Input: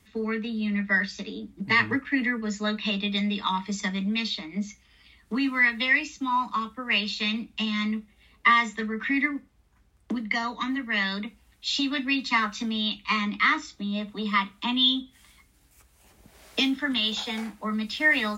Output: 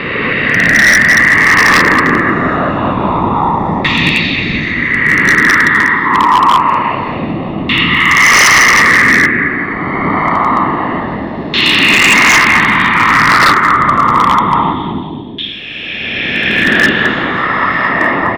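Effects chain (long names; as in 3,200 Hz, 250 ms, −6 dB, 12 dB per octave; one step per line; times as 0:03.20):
peak hold with a rise ahead of every peak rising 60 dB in 2.94 s
0:05.35–0:06.11: phaser with its sweep stopped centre 2,500 Hz, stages 6
0:17.36–0:17.89: spectral tilt +3 dB per octave
random phases in short frames
bouncing-ball delay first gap 220 ms, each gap 0.75×, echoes 5
auto-filter low-pass saw down 0.26 Hz 700–3,000 Hz
wave folding −9 dBFS
0:14.73–0:16.68: parametric band 620 Hz −5.5 dB 2.3 octaves
level +8 dB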